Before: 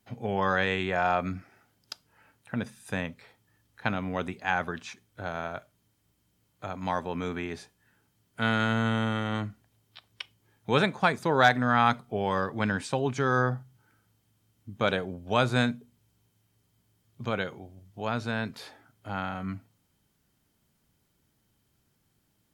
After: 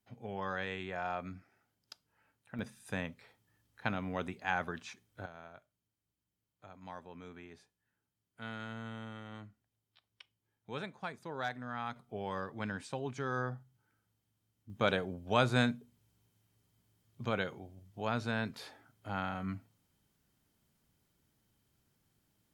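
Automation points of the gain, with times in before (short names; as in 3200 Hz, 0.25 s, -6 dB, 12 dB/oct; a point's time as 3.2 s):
-12 dB
from 2.59 s -6 dB
from 5.26 s -17.5 dB
from 11.96 s -11 dB
from 14.7 s -4 dB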